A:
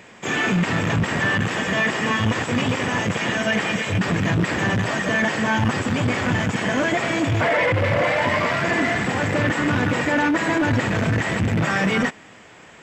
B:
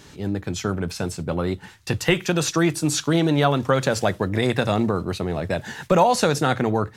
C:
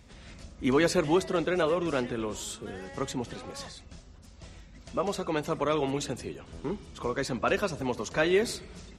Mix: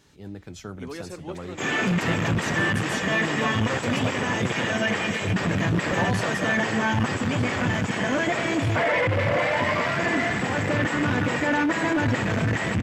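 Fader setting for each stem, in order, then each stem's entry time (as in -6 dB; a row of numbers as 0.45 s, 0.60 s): -3.0 dB, -12.5 dB, -13.5 dB; 1.35 s, 0.00 s, 0.15 s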